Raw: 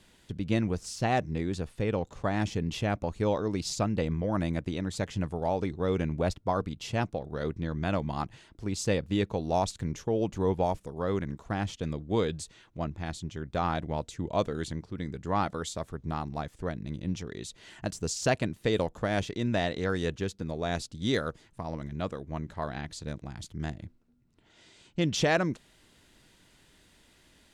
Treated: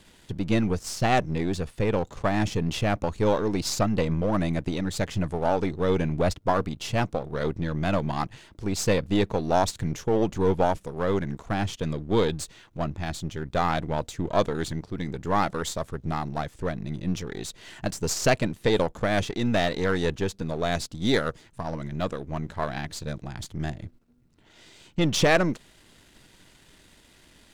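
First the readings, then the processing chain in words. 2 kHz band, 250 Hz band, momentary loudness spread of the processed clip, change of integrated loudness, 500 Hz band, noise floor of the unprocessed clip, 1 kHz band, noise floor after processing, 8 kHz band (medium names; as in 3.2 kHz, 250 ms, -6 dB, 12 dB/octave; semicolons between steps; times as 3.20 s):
+5.5 dB, +4.0 dB, 10 LU, +4.5 dB, +5.0 dB, -62 dBFS, +5.0 dB, -57 dBFS, +5.5 dB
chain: partial rectifier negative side -7 dB; trim +8 dB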